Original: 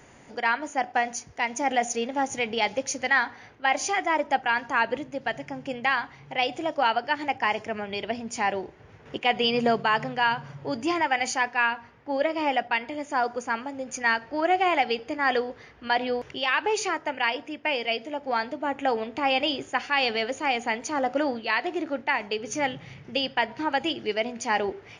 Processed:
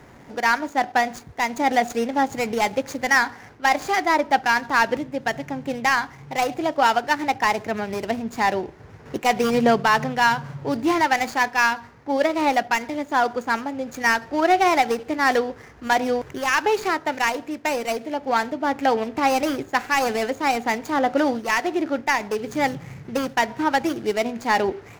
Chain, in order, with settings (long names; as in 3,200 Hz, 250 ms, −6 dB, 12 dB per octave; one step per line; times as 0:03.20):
running median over 15 samples
parametric band 570 Hz −3 dB 1.1 octaves
level +7.5 dB